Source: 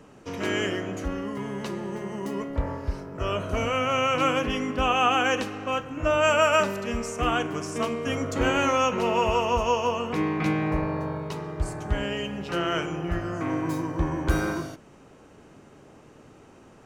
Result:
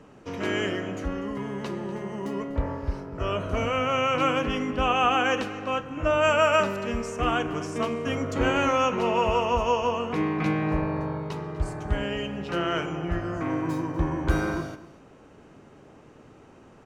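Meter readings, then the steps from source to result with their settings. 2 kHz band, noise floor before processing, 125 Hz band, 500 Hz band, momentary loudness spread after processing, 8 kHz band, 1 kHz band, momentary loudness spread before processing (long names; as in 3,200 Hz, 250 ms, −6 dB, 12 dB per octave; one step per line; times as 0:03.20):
−0.5 dB, −52 dBFS, +0.5 dB, 0.0 dB, 10 LU, −5.0 dB, 0.0 dB, 11 LU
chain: high-shelf EQ 6,200 Hz −9 dB
single-tap delay 245 ms −17.5 dB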